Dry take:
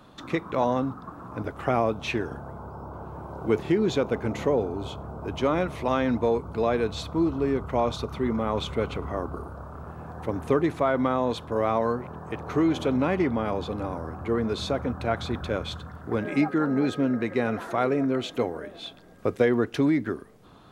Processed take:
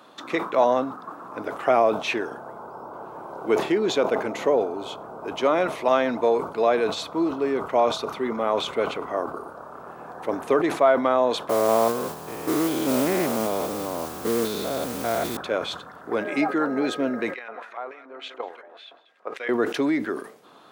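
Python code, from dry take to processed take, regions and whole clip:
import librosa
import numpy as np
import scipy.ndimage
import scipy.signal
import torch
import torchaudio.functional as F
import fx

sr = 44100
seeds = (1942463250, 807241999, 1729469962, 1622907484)

y = fx.chain(x, sr, fx.spec_steps(hold_ms=200),
    fx.low_shelf(hz=210.0, db=12.0),
    fx.mod_noise(seeds[0], snr_db=17), at=(11.49, 15.37))
y = fx.chain(y, sr, fx.echo_single(ms=185, db=-11.5),
    fx.level_steps(step_db=11),
    fx.filter_lfo_bandpass(shape='square', hz=3.5, low_hz=940.0, high_hz=2200.0, q=1.4), at=(17.34, 19.49))
y = scipy.signal.sosfilt(scipy.signal.butter(2, 360.0, 'highpass', fs=sr, output='sos'), y)
y = fx.dynamic_eq(y, sr, hz=650.0, q=7.9, threshold_db=-43.0, ratio=4.0, max_db=6)
y = fx.sustainer(y, sr, db_per_s=110.0)
y = y * 10.0 ** (4.0 / 20.0)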